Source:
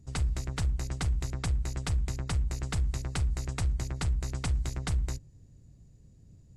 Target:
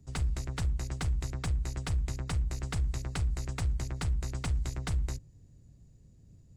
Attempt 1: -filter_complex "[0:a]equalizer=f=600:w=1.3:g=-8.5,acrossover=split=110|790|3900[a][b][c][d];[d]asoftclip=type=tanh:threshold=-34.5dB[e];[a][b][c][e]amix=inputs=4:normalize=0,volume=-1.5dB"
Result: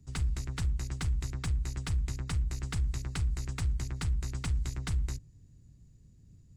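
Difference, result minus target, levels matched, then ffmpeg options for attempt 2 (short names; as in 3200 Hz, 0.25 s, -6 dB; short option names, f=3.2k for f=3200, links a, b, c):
500 Hz band -5.0 dB
-filter_complex "[0:a]acrossover=split=110|790|3900[a][b][c][d];[d]asoftclip=type=tanh:threshold=-34.5dB[e];[a][b][c][e]amix=inputs=4:normalize=0,volume=-1.5dB"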